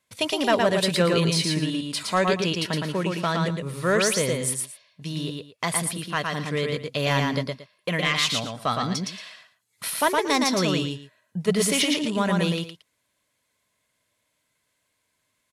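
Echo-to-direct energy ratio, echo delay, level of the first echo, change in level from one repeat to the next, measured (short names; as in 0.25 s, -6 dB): -3.0 dB, 0.114 s, -3.0 dB, -13.5 dB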